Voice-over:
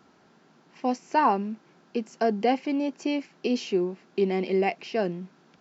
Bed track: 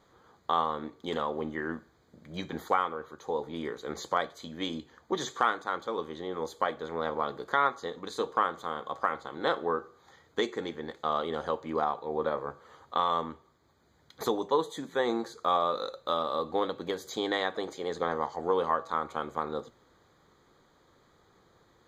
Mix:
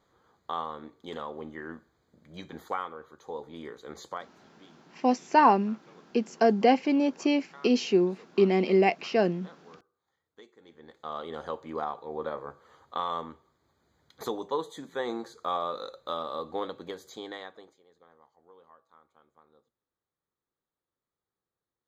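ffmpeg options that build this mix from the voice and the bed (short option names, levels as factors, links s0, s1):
-filter_complex "[0:a]adelay=4200,volume=1.33[s0];[1:a]volume=4.73,afade=t=out:st=4.08:d=0.22:silence=0.133352,afade=t=in:st=10.6:d=0.82:silence=0.105925,afade=t=out:st=16.67:d=1.16:silence=0.0530884[s1];[s0][s1]amix=inputs=2:normalize=0"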